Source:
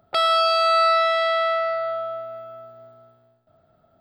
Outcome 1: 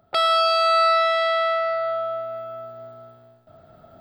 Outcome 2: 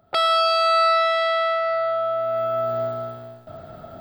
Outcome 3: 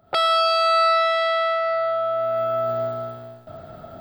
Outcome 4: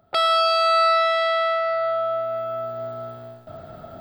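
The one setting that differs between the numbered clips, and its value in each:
camcorder AGC, rising by: 5.2, 32, 81, 13 dB per second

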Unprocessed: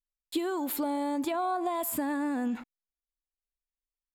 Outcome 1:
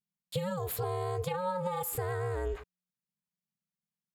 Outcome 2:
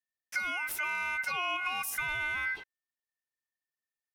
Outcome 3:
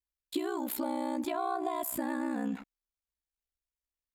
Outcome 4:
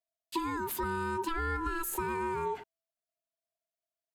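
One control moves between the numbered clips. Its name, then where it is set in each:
ring modulation, frequency: 180, 1,800, 31, 660 Hertz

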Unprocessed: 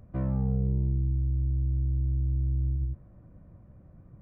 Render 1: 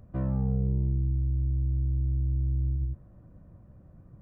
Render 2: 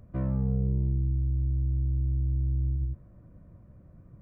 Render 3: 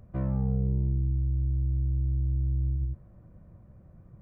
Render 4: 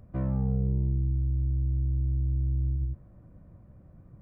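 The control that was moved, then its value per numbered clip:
notch filter, centre frequency: 2,200, 800, 280, 6,000 Hertz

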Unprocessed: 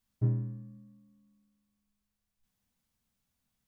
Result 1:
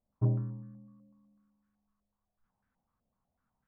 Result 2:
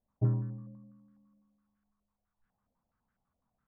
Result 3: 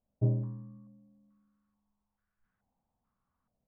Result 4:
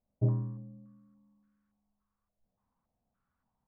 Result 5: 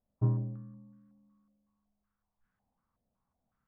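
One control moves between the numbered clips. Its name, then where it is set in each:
low-pass on a step sequencer, speed: 8, 12, 2.3, 3.5, 5.4 Hertz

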